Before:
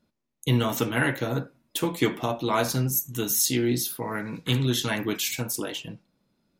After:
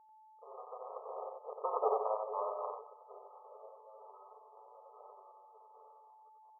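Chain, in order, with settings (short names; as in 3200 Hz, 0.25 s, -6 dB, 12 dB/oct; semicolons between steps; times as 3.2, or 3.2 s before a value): reverse delay 0.19 s, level -2 dB; Doppler pass-by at 1.82, 36 m/s, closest 6.4 m; whine 870 Hz -57 dBFS; half-wave rectifier; brick-wall FIR band-pass 400–1300 Hz; on a send: echo 91 ms -4.5 dB; on the sum: gain +2 dB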